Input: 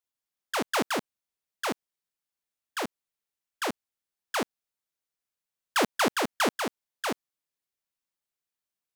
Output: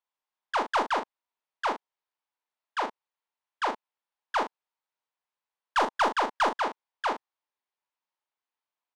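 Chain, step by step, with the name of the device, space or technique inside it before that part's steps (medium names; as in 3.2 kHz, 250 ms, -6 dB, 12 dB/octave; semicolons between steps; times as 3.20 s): intercom (band-pass 380–3600 Hz; peaking EQ 930 Hz +10 dB 0.55 oct; saturation -17 dBFS, distortion -15 dB; doubling 39 ms -7 dB)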